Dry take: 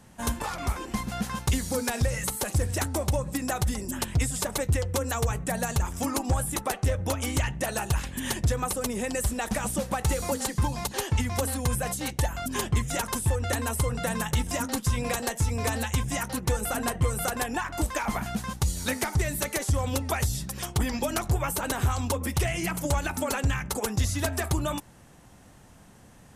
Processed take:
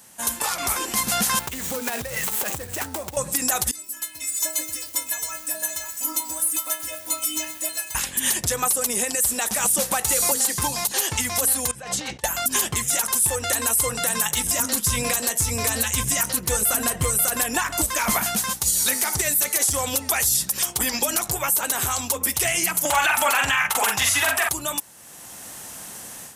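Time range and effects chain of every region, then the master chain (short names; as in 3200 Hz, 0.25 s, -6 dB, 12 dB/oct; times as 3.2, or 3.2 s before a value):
1.39–3.17 median filter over 9 samples + compressor 10:1, threshold -35 dBFS
3.71–7.95 metallic resonator 310 Hz, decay 0.43 s, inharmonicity 0.008 + lo-fi delay 0.126 s, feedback 80%, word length 9-bit, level -12 dB
11.71–12.24 air absorption 150 m + negative-ratio compressor -38 dBFS
14.44–18.14 Butterworth band-stop 820 Hz, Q 7.9 + low shelf 180 Hz +10 dB + echo 0.135 s -24 dB
22.85–24.49 band shelf 1500 Hz +14 dB 2.6 oct + doubler 44 ms -6 dB
whole clip: RIAA curve recording; AGC; limiter -11.5 dBFS; gain +1.5 dB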